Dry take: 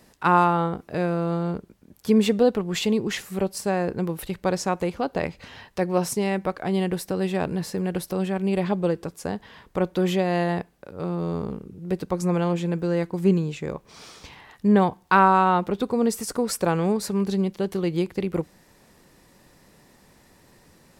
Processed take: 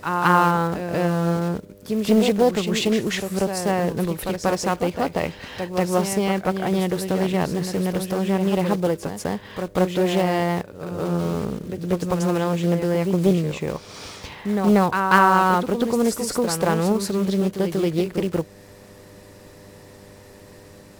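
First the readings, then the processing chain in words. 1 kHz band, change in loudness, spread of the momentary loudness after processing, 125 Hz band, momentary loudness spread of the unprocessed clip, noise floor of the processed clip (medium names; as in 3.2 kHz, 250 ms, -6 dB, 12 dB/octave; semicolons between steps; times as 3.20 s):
+2.0 dB, +2.5 dB, 11 LU, +3.0 dB, 13 LU, -46 dBFS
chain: block-companded coder 5-bit; in parallel at +1 dB: compression, threshold -32 dBFS, peak gain reduction 18.5 dB; on the sum: mains buzz 100 Hz, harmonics 6, -49 dBFS -1 dB/octave; reverse echo 188 ms -7 dB; loudspeaker Doppler distortion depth 0.31 ms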